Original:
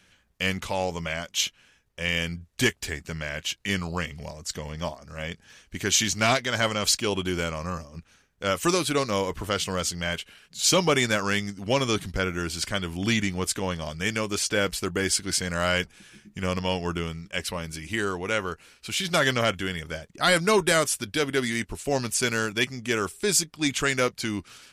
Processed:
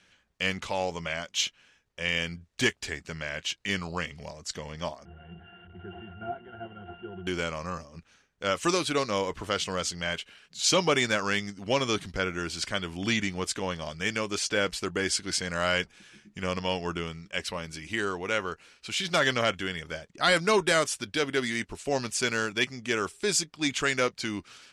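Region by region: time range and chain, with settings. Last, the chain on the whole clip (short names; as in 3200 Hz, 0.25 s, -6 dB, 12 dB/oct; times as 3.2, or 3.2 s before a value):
5.05–7.27 delta modulation 16 kbps, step -27 dBFS + HPF 42 Hz + octave resonator F, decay 0.15 s
whole clip: LPF 7400 Hz 12 dB/oct; low shelf 170 Hz -7 dB; gain -1.5 dB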